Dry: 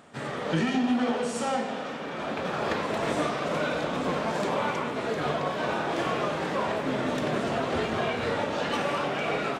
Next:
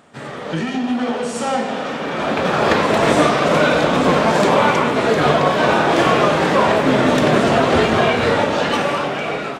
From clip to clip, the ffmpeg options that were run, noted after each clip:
ffmpeg -i in.wav -af "dynaudnorm=framelen=700:gausssize=5:maxgain=11.5dB,volume=3dB" out.wav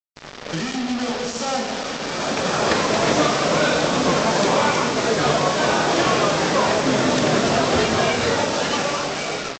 ffmpeg -i in.wav -af "aresample=16000,acrusher=bits=3:mix=0:aa=0.5,aresample=44100,equalizer=frequency=5300:width_type=o:width=0.98:gain=7.5,volume=-4.5dB" out.wav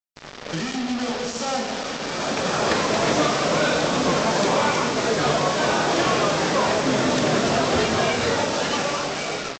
ffmpeg -i in.wav -af "asoftclip=type=tanh:threshold=-6.5dB,volume=-1.5dB" out.wav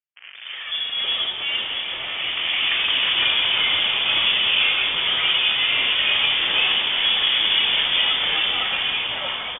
ffmpeg -i in.wav -filter_complex "[0:a]acrossover=split=420|2100[link_01][link_02][link_03];[link_01]adelay=180[link_04];[link_03]adelay=510[link_05];[link_04][link_02][link_05]amix=inputs=3:normalize=0,aeval=exprs='0.398*(cos(1*acos(clip(val(0)/0.398,-1,1)))-cos(1*PI/2))+0.0126*(cos(4*acos(clip(val(0)/0.398,-1,1)))-cos(4*PI/2))+0.00794*(cos(8*acos(clip(val(0)/0.398,-1,1)))-cos(8*PI/2))':channel_layout=same,lowpass=frequency=3100:width_type=q:width=0.5098,lowpass=frequency=3100:width_type=q:width=0.6013,lowpass=frequency=3100:width_type=q:width=0.9,lowpass=frequency=3100:width_type=q:width=2.563,afreqshift=-3600,volume=2.5dB" out.wav

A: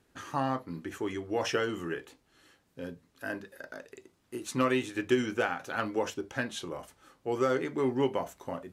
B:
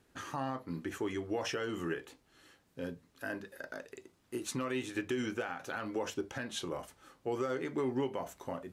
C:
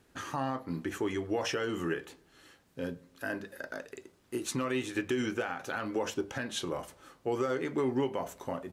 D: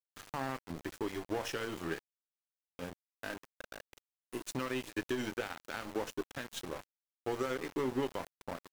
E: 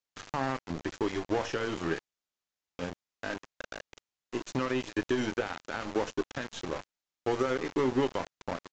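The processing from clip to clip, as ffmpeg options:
ffmpeg -i in.wav -af "alimiter=level_in=1.5dB:limit=-24dB:level=0:latency=1:release=170,volume=-1.5dB" out.wav
ffmpeg -i in.wav -filter_complex "[0:a]asplit=2[link_01][link_02];[link_02]adelay=102,lowpass=frequency=2000:poles=1,volume=-23dB,asplit=2[link_03][link_04];[link_04]adelay=102,lowpass=frequency=2000:poles=1,volume=0.53,asplit=2[link_05][link_06];[link_06]adelay=102,lowpass=frequency=2000:poles=1,volume=0.53,asplit=2[link_07][link_08];[link_08]adelay=102,lowpass=frequency=2000:poles=1,volume=0.53[link_09];[link_01][link_03][link_05][link_07][link_09]amix=inputs=5:normalize=0,volume=3.5dB" out.wav
ffmpeg -i in.wav -af "aeval=exprs='0.0891*(cos(1*acos(clip(val(0)/0.0891,-1,1)))-cos(1*PI/2))+0.0141*(cos(3*acos(clip(val(0)/0.0891,-1,1)))-cos(3*PI/2))+0.00224*(cos(6*acos(clip(val(0)/0.0891,-1,1)))-cos(6*PI/2))':channel_layout=same,aeval=exprs='val(0)*gte(abs(val(0)),0.01)':channel_layout=same,volume=-2dB" out.wav
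ffmpeg -i in.wav -filter_complex "[0:a]acrossover=split=1500[link_01][link_02];[link_02]alimiter=level_in=13.5dB:limit=-24dB:level=0:latency=1:release=12,volume=-13.5dB[link_03];[link_01][link_03]amix=inputs=2:normalize=0,aresample=16000,aresample=44100,volume=6.5dB" out.wav

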